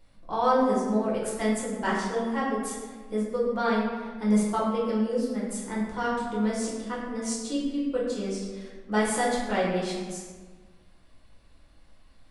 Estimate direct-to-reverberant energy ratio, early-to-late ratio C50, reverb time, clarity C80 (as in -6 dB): -6.5 dB, 1.5 dB, 1.4 s, 3.0 dB